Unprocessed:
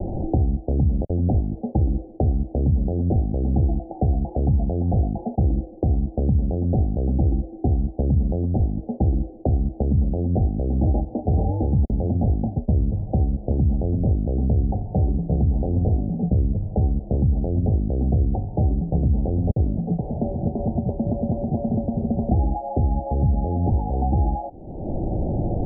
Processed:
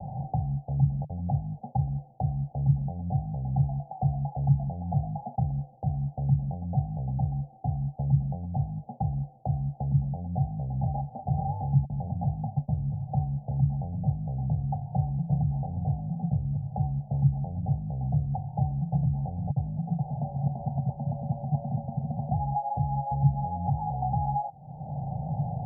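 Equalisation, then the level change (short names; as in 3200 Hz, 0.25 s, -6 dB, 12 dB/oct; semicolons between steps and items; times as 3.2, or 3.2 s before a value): double band-pass 340 Hz, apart 2.5 oct; air absorption 460 m; +4.5 dB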